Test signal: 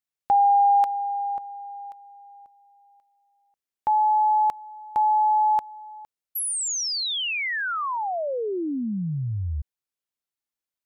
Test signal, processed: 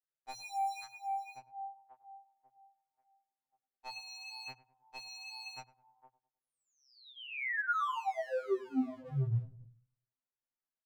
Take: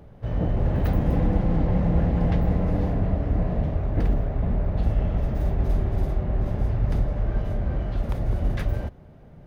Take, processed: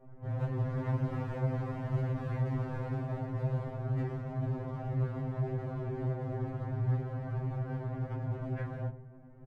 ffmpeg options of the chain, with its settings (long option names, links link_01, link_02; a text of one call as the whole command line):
ffmpeg -i in.wav -filter_complex "[0:a]lowpass=frequency=1900:width=0.5412,lowpass=frequency=1900:width=1.3066,bandreject=frequency=60:width_type=h:width=6,bandreject=frequency=120:width_type=h:width=6,bandreject=frequency=180:width_type=h:width=6,adynamicequalizer=threshold=0.0112:dfrequency=110:dqfactor=1.3:tfrequency=110:tqfactor=1.3:attack=5:release=100:ratio=0.375:range=2.5:mode=boostabove:tftype=bell,acrossover=split=110|1400[link_01][link_02][link_03];[link_02]asoftclip=type=hard:threshold=-30.5dB[link_04];[link_01][link_04][link_03]amix=inputs=3:normalize=0,flanger=delay=15:depth=4.8:speed=2,asplit=2[link_05][link_06];[link_06]adelay=103,lowpass=frequency=1100:poles=1,volume=-15.5dB,asplit=2[link_07][link_08];[link_08]adelay=103,lowpass=frequency=1100:poles=1,volume=0.42,asplit=2[link_09][link_10];[link_10]adelay=103,lowpass=frequency=1100:poles=1,volume=0.42,asplit=2[link_11][link_12];[link_12]adelay=103,lowpass=frequency=1100:poles=1,volume=0.42[link_13];[link_07][link_09][link_11][link_13]amix=inputs=4:normalize=0[link_14];[link_05][link_14]amix=inputs=2:normalize=0,afftfilt=real='re*2.45*eq(mod(b,6),0)':imag='im*2.45*eq(mod(b,6),0)':win_size=2048:overlap=0.75" out.wav